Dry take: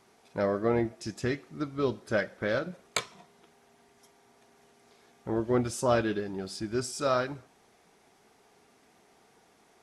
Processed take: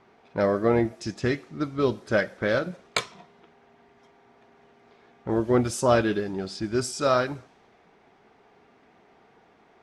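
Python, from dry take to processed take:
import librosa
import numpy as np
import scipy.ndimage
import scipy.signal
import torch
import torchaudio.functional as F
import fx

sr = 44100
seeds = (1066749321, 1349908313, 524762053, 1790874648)

y = fx.env_lowpass(x, sr, base_hz=2600.0, full_db=-27.0)
y = y * librosa.db_to_amplitude(5.0)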